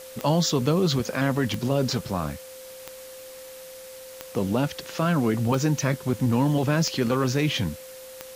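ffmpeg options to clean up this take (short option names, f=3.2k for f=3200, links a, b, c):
-af "adeclick=t=4,bandreject=f=520:w=30,afwtdn=0.0056"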